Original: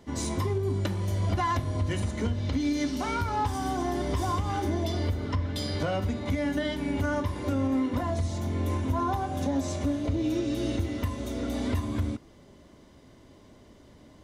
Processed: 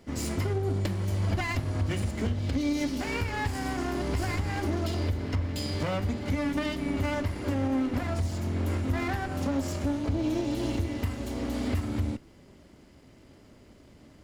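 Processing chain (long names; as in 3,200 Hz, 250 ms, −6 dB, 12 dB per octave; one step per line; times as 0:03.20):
lower of the sound and its delayed copy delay 0.41 ms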